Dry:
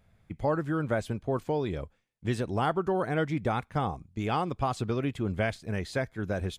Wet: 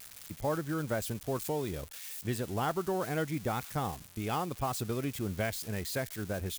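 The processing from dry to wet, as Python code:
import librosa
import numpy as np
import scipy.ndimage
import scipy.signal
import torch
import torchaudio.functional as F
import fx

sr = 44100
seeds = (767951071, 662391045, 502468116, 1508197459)

y = x + 0.5 * 10.0 ** (-28.0 / 20.0) * np.diff(np.sign(x), prepend=np.sign(x[:1]))
y = F.gain(torch.from_numpy(y), -4.5).numpy()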